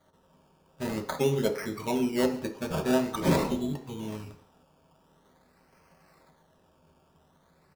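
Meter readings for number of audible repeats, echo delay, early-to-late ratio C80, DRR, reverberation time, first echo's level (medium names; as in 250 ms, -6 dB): 1, 138 ms, 13.5 dB, 2.5 dB, 0.50 s, -20.0 dB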